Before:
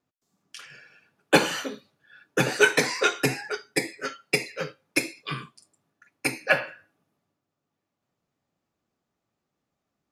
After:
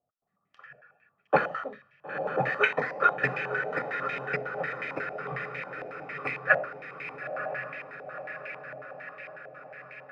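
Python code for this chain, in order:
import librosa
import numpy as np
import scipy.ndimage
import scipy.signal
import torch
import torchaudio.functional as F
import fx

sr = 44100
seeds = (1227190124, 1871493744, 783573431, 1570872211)

y = x + 0.55 * np.pad(x, (int(1.6 * sr / 1000.0), 0))[:len(x)]
y = fx.echo_diffused(y, sr, ms=963, feedback_pct=65, wet_db=-6.0)
y = fx.filter_held_lowpass(y, sr, hz=11.0, low_hz=700.0, high_hz=2200.0)
y = y * librosa.db_to_amplitude(-8.0)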